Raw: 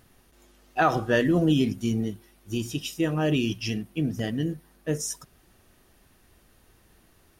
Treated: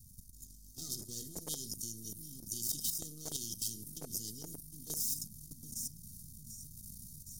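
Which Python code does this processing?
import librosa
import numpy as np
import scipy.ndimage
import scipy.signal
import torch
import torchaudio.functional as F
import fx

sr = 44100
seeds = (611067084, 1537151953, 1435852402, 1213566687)

p1 = np.where(x < 0.0, 10.0 ** (-12.0 / 20.0) * x, x)
p2 = fx.rider(p1, sr, range_db=3, speed_s=2.0)
p3 = scipy.signal.sosfilt(scipy.signal.cheby2(4, 50, [520.0, 2600.0], 'bandstop', fs=sr, output='sos'), p2)
p4 = fx.high_shelf(p3, sr, hz=2300.0, db=3.0)
p5 = p4 + 0.74 * np.pad(p4, (int(1.6 * sr / 1000.0), 0))[:len(p4)]
p6 = p5 + fx.echo_feedback(p5, sr, ms=751, feedback_pct=46, wet_db=-22.5, dry=0)
p7 = fx.level_steps(p6, sr, step_db=12)
p8 = fx.dynamic_eq(p7, sr, hz=120.0, q=6.5, threshold_db=-49.0, ratio=4.0, max_db=-3)
p9 = fx.spectral_comp(p8, sr, ratio=10.0)
y = F.gain(torch.from_numpy(p9), -2.0).numpy()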